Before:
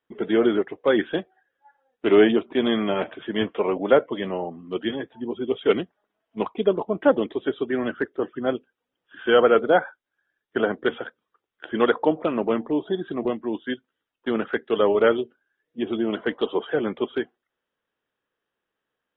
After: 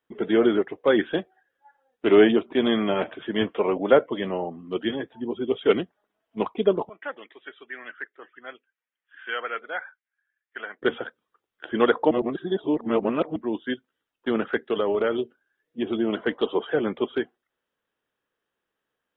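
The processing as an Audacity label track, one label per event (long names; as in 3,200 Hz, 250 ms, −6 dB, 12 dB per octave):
6.890000	10.820000	resonant band-pass 2,000 Hz, Q 2.6
12.110000	13.360000	reverse
14.690000	15.990000	downward compressor, threshold −19 dBFS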